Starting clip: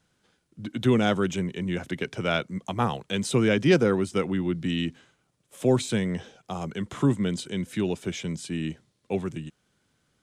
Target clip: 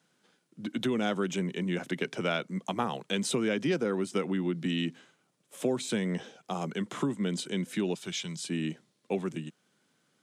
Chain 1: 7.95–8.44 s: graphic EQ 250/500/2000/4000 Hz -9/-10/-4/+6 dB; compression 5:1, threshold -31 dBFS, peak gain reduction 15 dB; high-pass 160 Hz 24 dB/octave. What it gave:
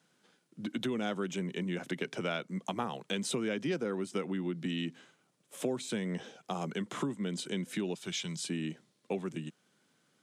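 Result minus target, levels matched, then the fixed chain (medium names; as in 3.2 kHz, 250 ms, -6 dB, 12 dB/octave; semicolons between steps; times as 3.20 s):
compression: peak gain reduction +5 dB
7.95–8.44 s: graphic EQ 250/500/2000/4000 Hz -9/-10/-4/+6 dB; compression 5:1, threshold -25 dBFS, peak gain reduction 10.5 dB; high-pass 160 Hz 24 dB/octave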